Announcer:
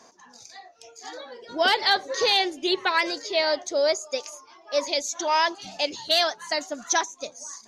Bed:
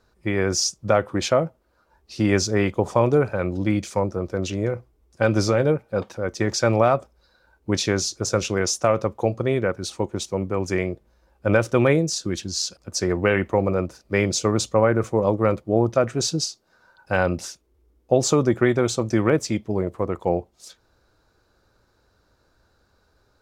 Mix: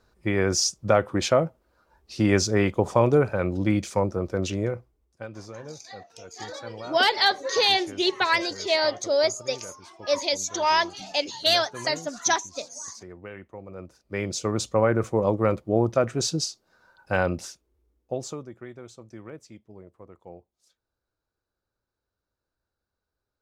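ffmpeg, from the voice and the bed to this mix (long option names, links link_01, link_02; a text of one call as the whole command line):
ffmpeg -i stem1.wav -i stem2.wav -filter_complex "[0:a]adelay=5350,volume=0.5dB[link_01];[1:a]volume=17.5dB,afade=type=out:start_time=4.5:duration=0.78:silence=0.1,afade=type=in:start_time=13.67:duration=1.24:silence=0.11885,afade=type=out:start_time=17.16:duration=1.32:silence=0.1[link_02];[link_01][link_02]amix=inputs=2:normalize=0" out.wav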